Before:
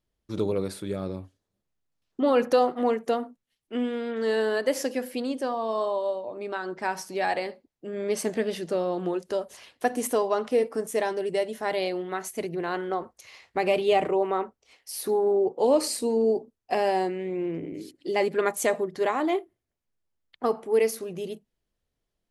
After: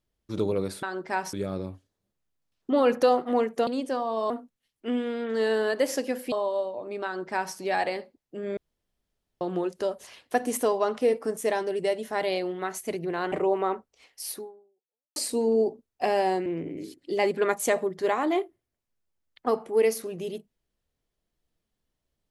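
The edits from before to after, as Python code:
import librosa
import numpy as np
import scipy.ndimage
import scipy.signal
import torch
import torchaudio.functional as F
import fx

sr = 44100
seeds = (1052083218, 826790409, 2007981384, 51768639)

y = fx.edit(x, sr, fx.move(start_s=5.19, length_s=0.63, to_s=3.17),
    fx.duplicate(start_s=6.55, length_s=0.5, to_s=0.83),
    fx.room_tone_fill(start_s=8.07, length_s=0.84),
    fx.cut(start_s=12.82, length_s=1.19),
    fx.fade_out_span(start_s=15.0, length_s=0.85, curve='exp'),
    fx.cut(start_s=17.15, length_s=0.28), tone=tone)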